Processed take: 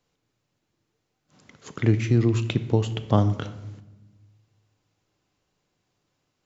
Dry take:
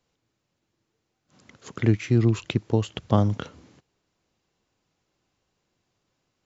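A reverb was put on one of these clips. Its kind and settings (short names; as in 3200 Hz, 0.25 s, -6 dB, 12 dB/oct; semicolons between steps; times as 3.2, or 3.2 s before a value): shoebox room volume 530 m³, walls mixed, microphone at 0.4 m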